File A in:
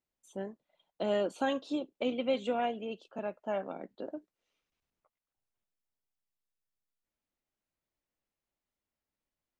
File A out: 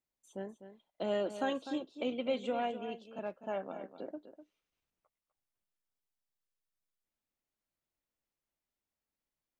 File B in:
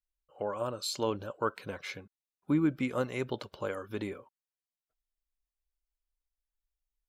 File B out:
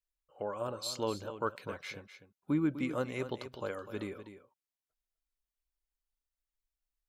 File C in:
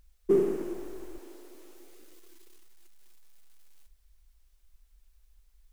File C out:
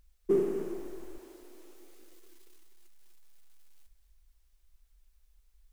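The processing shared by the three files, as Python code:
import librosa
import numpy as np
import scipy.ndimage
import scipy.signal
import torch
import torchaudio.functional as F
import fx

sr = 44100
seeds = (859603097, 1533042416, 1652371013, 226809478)

y = x + 10.0 ** (-11.5 / 20.0) * np.pad(x, (int(250 * sr / 1000.0), 0))[:len(x)]
y = F.gain(torch.from_numpy(y), -3.0).numpy()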